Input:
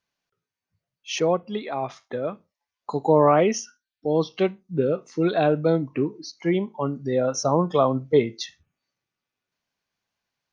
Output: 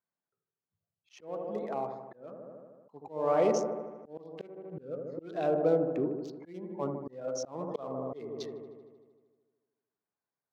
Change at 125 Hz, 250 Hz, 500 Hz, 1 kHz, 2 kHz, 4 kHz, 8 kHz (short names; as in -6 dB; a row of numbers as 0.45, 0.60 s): -15.5 dB, -12.0 dB, -9.5 dB, -11.5 dB, -15.0 dB, -17.0 dB, n/a